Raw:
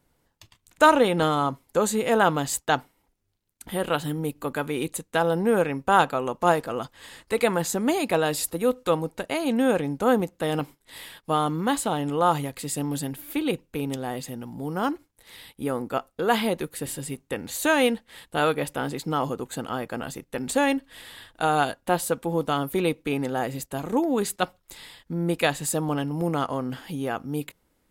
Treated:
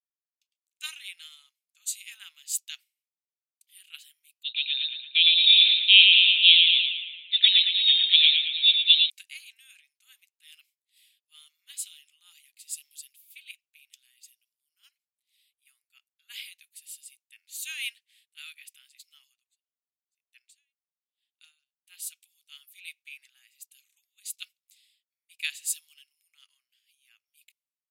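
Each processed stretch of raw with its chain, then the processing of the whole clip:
4.43–9.1 thinning echo 0.113 s, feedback 76%, high-pass 270 Hz, level -3 dB + inverted band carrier 4000 Hz
19.34–21.77 weighting filter A + hard clip -11.5 dBFS + dB-linear tremolo 1 Hz, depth 40 dB
whole clip: Chebyshev high-pass 2400 Hz, order 4; three-band expander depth 100%; gain -4.5 dB

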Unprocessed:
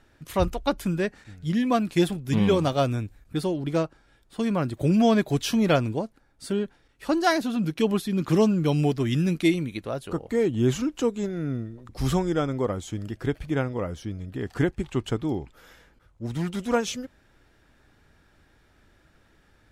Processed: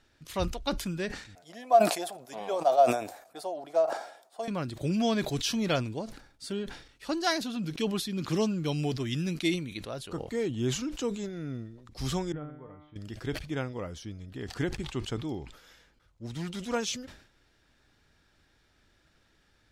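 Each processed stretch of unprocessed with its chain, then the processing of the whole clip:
1.35–4.48 resonant high-pass 680 Hz, resonance Q 7.2 + bell 3100 Hz -11.5 dB 2.3 oct
12.32–12.96 inverse Chebyshev low-pass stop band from 8900 Hz, stop band 70 dB + low shelf 170 Hz +6.5 dB + resonator 150 Hz, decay 0.74 s, mix 90%
whole clip: bell 4700 Hz +8.5 dB 1.8 oct; sustainer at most 92 dB/s; gain -8 dB

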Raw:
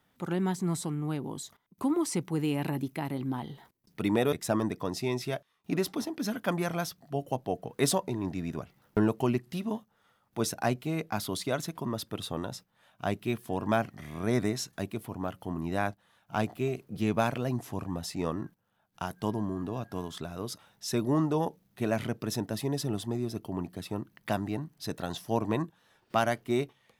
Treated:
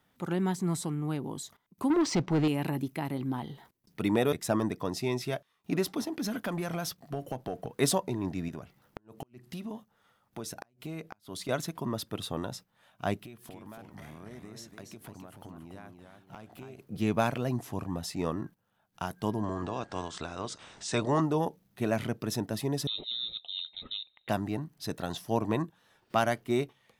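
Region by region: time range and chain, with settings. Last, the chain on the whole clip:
1.9–2.48 LPF 5700 Hz 24 dB/oct + sample leveller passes 2
6.12–7.67 compressor 5:1, threshold -32 dBFS + sample leveller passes 1
8.48–11.49 compressor, threshold -35 dBFS + flipped gate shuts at -28 dBFS, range -33 dB
13.22–16.79 compressor 16:1, threshold -42 dBFS + warbling echo 0.286 s, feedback 32%, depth 141 cents, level -6 dB
19.42–21.2 spectral limiter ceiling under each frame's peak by 14 dB + steep low-pass 8900 Hz 72 dB/oct + upward compressor, threshold -38 dBFS
22.87–24.29 inverted band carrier 3900 Hz + EQ curve 540 Hz 0 dB, 1700 Hz -8 dB, 2600 Hz -4 dB
whole clip: dry

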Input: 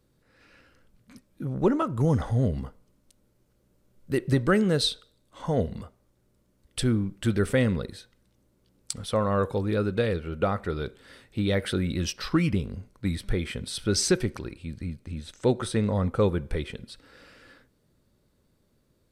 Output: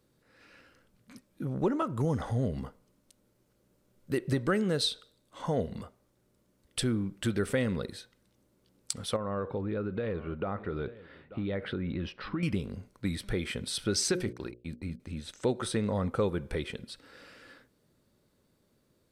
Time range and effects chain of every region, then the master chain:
9.16–12.43 echo 0.886 s -23 dB + compressor 5:1, threshold -26 dBFS + air absorption 410 m
14.04–15 gate -38 dBFS, range -41 dB + notches 60/120/180/240/300/360/420/480/540/600 Hz
whole clip: low shelf 85 Hz -11 dB; compressor 2:1, threshold -28 dBFS

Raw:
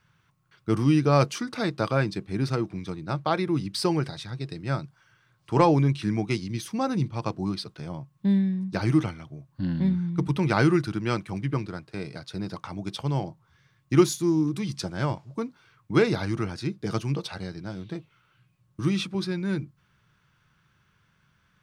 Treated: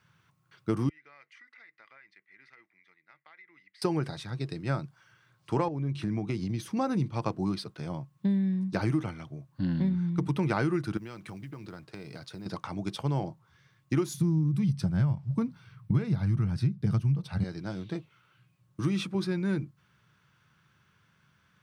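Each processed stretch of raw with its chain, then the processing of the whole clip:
0.89–3.82 band-pass 2000 Hz, Q 15 + compressor, threshold -50 dBFS
5.68–6.77 tilt -1.5 dB/oct + compressor, threshold -26 dBFS
10.97–12.46 compressor 16:1, threshold -37 dBFS + modulation noise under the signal 33 dB
14.14–17.44 resonant low shelf 230 Hz +13.5 dB, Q 1.5 + notch 6800 Hz, Q 7
whole clip: HPF 81 Hz; dynamic EQ 4400 Hz, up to -5 dB, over -46 dBFS, Q 0.73; compressor 12:1, threshold -23 dBFS

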